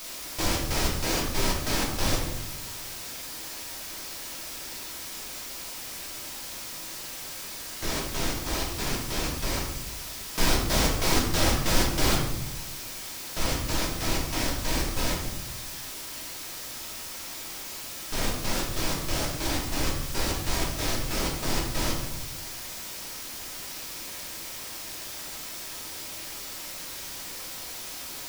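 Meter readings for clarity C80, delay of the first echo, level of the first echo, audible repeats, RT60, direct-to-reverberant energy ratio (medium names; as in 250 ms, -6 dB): 7.0 dB, no echo, no echo, no echo, 0.90 s, -3.0 dB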